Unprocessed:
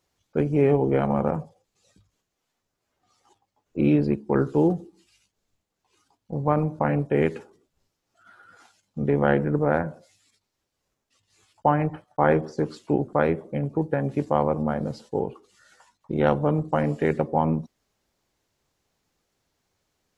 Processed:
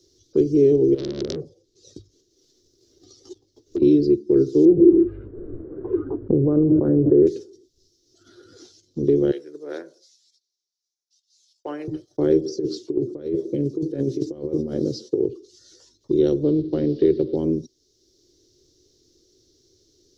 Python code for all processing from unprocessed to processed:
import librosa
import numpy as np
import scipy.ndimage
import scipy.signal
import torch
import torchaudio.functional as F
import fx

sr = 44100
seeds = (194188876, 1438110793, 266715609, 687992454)

y = fx.chain(x, sr, fx.transient(attack_db=8, sustain_db=-2),
    fx.over_compress(threshold_db=-23.0, ratio=-0.5),
    fx.transformer_sat(knee_hz=3000.0), at=(0.94, 3.82))
y = fx.chain(y, sr, fx.steep_lowpass(hz=1500.0, slope=48),
    fx.env_flatten(amount_pct=100), at=(4.65, 7.27))
y = fx.chain(y, sr, fx.highpass(hz=1000.0, slope=12),
    fx.band_widen(depth_pct=70), at=(9.31, 11.88))
y = fx.chain(y, sr, fx.highpass(hz=110.0, slope=12),
    fx.over_compress(threshold_db=-27.0, ratio=-0.5), at=(12.45, 15.27))
y = fx.chain(y, sr, fx.law_mismatch(coded='mu'),
    fx.steep_lowpass(hz=4200.0, slope=36), at=(16.43, 17.36))
y = fx.curve_eq(y, sr, hz=(130.0, 190.0, 360.0, 820.0, 1600.0, 2500.0, 3700.0, 5800.0, 8200.0), db=(0, -11, 13, -25, -18, -15, 7, 15, -4))
y = fx.band_squash(y, sr, depth_pct=40)